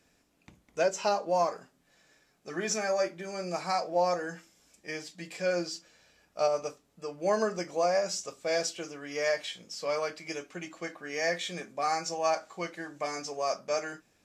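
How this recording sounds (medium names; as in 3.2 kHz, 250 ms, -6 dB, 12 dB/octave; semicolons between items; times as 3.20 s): noise floor -70 dBFS; spectral tilt -3.0 dB/octave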